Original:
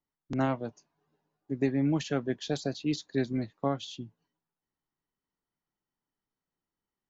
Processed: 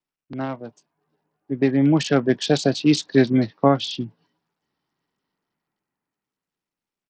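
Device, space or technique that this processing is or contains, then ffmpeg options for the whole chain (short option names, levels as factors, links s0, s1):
Bluetooth headset: -af "highpass=110,dynaudnorm=f=200:g=17:m=5.62,aresample=16000,aresample=44100" -ar 44100 -c:a sbc -b:a 64k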